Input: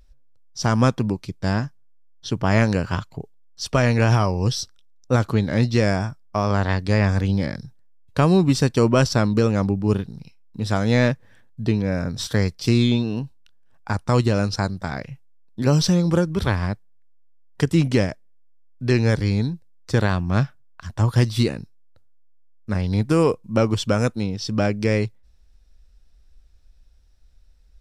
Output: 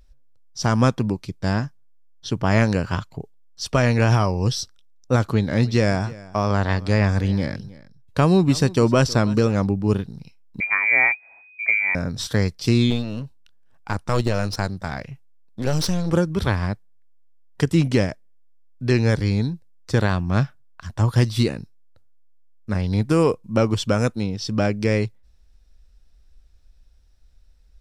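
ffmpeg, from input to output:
-filter_complex "[0:a]asettb=1/sr,asplit=3[a][b][c];[a]atrim=end=5.204[d];[b]atrim=start=5.2:end=9.6,asetpts=PTS-STARTPTS,afade=t=in:d=0.004:c=qsin,afade=t=out:st=4.396:d=0.004:c=qsin,aecho=1:1:316:0.1,atrim=end_sample=194040[e];[c]atrim=start=9.596[f];[d][e]acrossfade=d=0.004:c1=hsin:c2=qsin[g];[g][f]acrossfade=d=0.004:c1=qsin:c2=hsin,asettb=1/sr,asplit=3[h][i][j];[h]atrim=end=10.604[k];[i]atrim=start=10.6:end=11.95,asetpts=PTS-STARTPTS,afade=t=in:d=0.004:c=qsin,afade=t=out:st=1.346:d=0.004:c=qsin,lowpass=f=2.1k:t=q:w=0.5098,lowpass=f=2.1k:t=q:w=0.6013,lowpass=f=2.1k:t=q:w=0.9,lowpass=f=2.1k:t=q:w=2.563,afreqshift=-2500[l];[j]atrim=start=11.946[m];[k][l]acrossfade=d=0.004:c1=hsin:c2=qsin[n];[n][m]acrossfade=d=0.004:c1=qsin:c2=hsin,asettb=1/sr,asplit=3[o][p][q];[o]atrim=end=12.904[r];[p]atrim=start=12.9:end=16.13,asetpts=PTS-STARTPTS,afade=t=in:d=0.004:c=qsin,afade=t=out:st=3.226:d=0.004:c=qsin,aeval=exprs='clip(val(0),-1,0.0299)':c=same[s];[q]atrim=start=16.126[t];[r][s]acrossfade=d=0.004:c1=hsin:c2=qsin[u];[u][t]acrossfade=d=0.004:c1=qsin:c2=hsin"

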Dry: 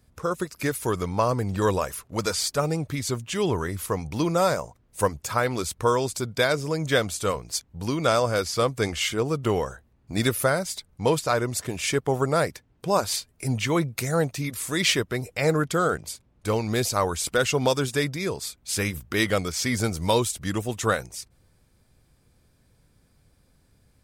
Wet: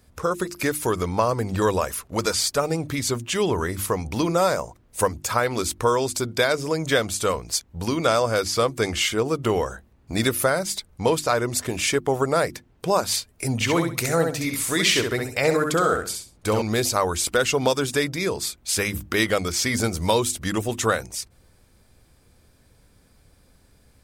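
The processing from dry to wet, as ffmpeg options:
-filter_complex "[0:a]asettb=1/sr,asplit=3[a][b][c];[a]atrim=end=13.544[d];[b]atrim=start=13.54:end=16.62,asetpts=PTS-STARTPTS,afade=t=in:d=0.004:c=qsin,afade=t=out:st=3.076:d=0.004:c=qsin,aecho=1:1:66|132|198:0.562|0.124|0.0272,atrim=end_sample=135828[e];[c]atrim=start=16.616[f];[d][e]acrossfade=d=0.004:c1=hsin:c2=qsin[g];[g][f]acrossfade=d=0.004:c1=qsin:c2=hsin,equalizer=f=140:w=2.4:g=-5,bandreject=f=50:t=h:w=6,bandreject=f=100:t=h:w=6,bandreject=f=150:t=h:w=6,bandreject=f=200:t=h:w=6,bandreject=f=250:t=h:w=6,bandreject=f=300:t=h:w=6,bandreject=f=350:t=h:w=6,acompressor=threshold=-31dB:ratio=1.5,volume=6.5dB"

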